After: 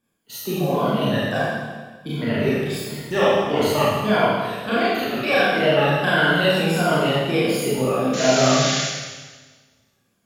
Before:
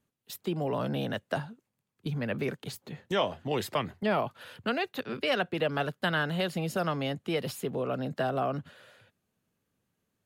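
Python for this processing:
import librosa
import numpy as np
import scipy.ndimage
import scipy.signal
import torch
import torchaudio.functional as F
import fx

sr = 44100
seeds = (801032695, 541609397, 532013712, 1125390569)

y = fx.spec_ripple(x, sr, per_octave=1.8, drift_hz=-1.5, depth_db=13)
y = fx.spec_paint(y, sr, seeds[0], shape='noise', start_s=8.13, length_s=0.68, low_hz=1400.0, high_hz=7300.0, level_db=-34.0)
y = fx.rev_schroeder(y, sr, rt60_s=1.4, comb_ms=27, drr_db=-9.5)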